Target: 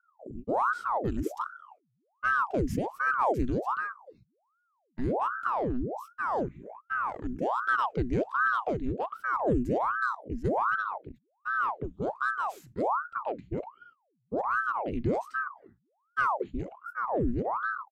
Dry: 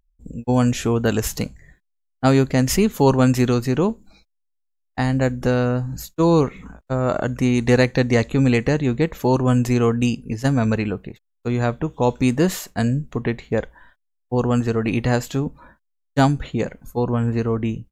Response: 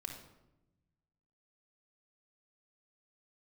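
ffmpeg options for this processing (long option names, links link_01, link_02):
-af "firequalizer=gain_entry='entry(100,0);entry(380,-29);entry(1600,-19);entry(5000,-23);entry(11000,-21)':delay=0.05:min_phase=1,aeval=exprs='val(0)*sin(2*PI*780*n/s+780*0.85/1.3*sin(2*PI*1.3*n/s))':channel_layout=same"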